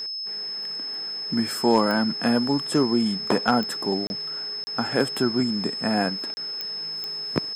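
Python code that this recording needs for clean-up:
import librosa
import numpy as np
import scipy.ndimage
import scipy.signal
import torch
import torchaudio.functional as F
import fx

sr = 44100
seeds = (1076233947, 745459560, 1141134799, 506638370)

y = fx.fix_declip(x, sr, threshold_db=-9.0)
y = fx.fix_declick_ar(y, sr, threshold=10.0)
y = fx.notch(y, sr, hz=5200.0, q=30.0)
y = fx.fix_interpolate(y, sr, at_s=(4.07, 4.64, 6.34), length_ms=30.0)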